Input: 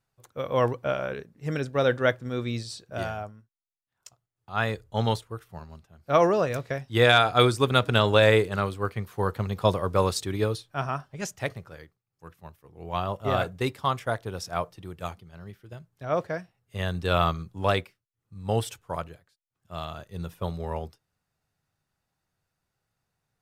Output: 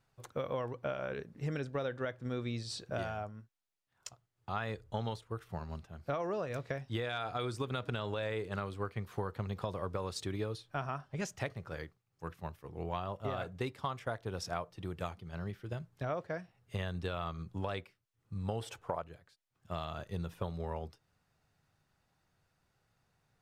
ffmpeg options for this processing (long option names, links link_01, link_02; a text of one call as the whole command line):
ffmpeg -i in.wav -filter_complex "[0:a]asettb=1/sr,asplit=3[link_01][link_02][link_03];[link_01]atrim=end=18.614[link_04];[link_02]atrim=start=18.61:end=19.02,asetpts=PTS-STARTPTS,afade=type=in:duration=0.004:curve=qsin,afade=type=out:start_time=0.406:duration=0.004:curve=qsin,equalizer=frequency=680:width_type=o:width=2.1:gain=10[link_05];[link_03]atrim=start=19.016[link_06];[link_04][link_05]acrossfade=duration=0.004:curve1=hsin:curve2=qsin[link_07];[link_07][link_06]acrossfade=duration=0.004:curve1=qsin:curve2=hsin,alimiter=limit=-14dB:level=0:latency=1:release=108,highshelf=frequency=8700:gain=-10.5,acompressor=threshold=-40dB:ratio=6,volume=5dB" out.wav